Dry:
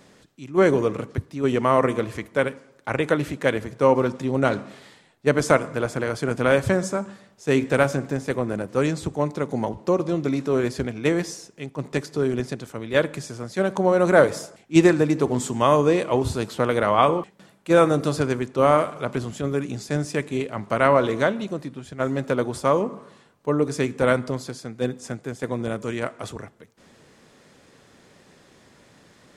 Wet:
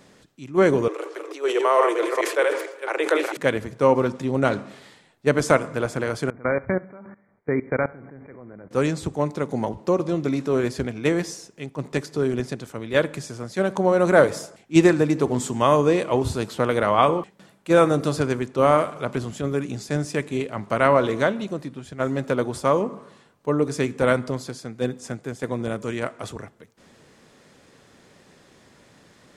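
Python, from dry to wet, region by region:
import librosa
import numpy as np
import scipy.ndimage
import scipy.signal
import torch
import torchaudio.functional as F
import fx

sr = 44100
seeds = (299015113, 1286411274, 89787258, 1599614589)

y = fx.chain(x, sr, fx.reverse_delay(ms=222, wet_db=-4.0),
    fx.steep_highpass(hz=320.0, slope=96),
    fx.sustainer(db_per_s=81.0), at=(0.88, 3.37))
y = fx.chain(y, sr, fx.level_steps(step_db=21),
    fx.brickwall_lowpass(high_hz=2400.0),
    fx.echo_feedback(ms=69, feedback_pct=40, wet_db=-22.0), at=(6.3, 8.71))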